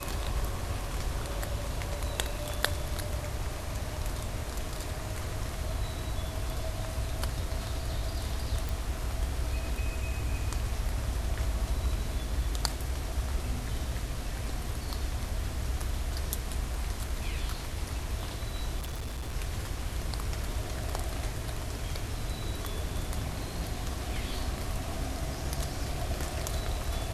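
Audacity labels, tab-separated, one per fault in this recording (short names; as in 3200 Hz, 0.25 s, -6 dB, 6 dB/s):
8.690000	8.690000	pop
18.790000	19.340000	clipped -32 dBFS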